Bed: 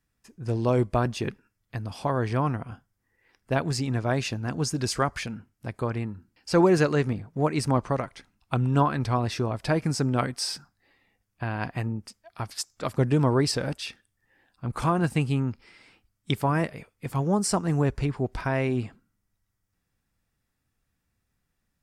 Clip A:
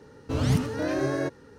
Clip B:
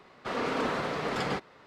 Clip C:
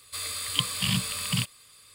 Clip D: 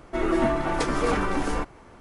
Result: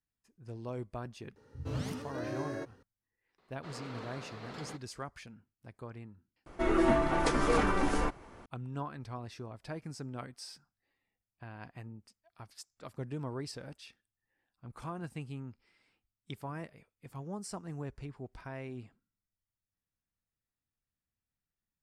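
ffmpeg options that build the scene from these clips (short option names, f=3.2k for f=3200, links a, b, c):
-filter_complex "[0:a]volume=-17dB[a];[1:a]acrossover=split=170[b][c];[c]adelay=110[d];[b][d]amix=inputs=2:normalize=0[e];[2:a]equalizer=f=4.2k:t=o:w=0.29:g=6[f];[a]asplit=2[g][h];[g]atrim=end=6.464[i];[4:a]atrim=end=2,asetpts=PTS-STARTPTS,volume=-3.5dB[j];[h]atrim=start=8.456[k];[e]atrim=end=1.58,asetpts=PTS-STARTPTS,volume=-11dB,afade=t=in:d=0.004:c=hsin,afade=t=out:st=1.576:d=0.004:c=hsin,adelay=1250[l];[f]atrim=end=1.66,asetpts=PTS-STARTPTS,volume=-15.5dB,afade=t=in:d=0.004:c=hsin,afade=t=out:st=1.656:d=0.004:c=hsin,adelay=3380[m];[i][j]acrossfade=d=0.004:c1=hsin:c2=hsin[n];[n][k]acrossfade=d=0.004:c1=hsin:c2=hsin[o];[o][l][m]amix=inputs=3:normalize=0"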